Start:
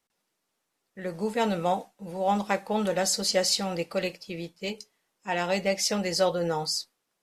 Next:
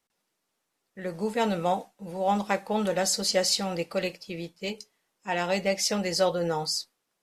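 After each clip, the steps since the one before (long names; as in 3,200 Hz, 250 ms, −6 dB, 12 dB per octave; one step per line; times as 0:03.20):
no processing that can be heard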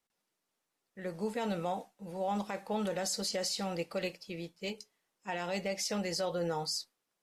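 brickwall limiter −19.5 dBFS, peak gain reduction 9 dB
level −5.5 dB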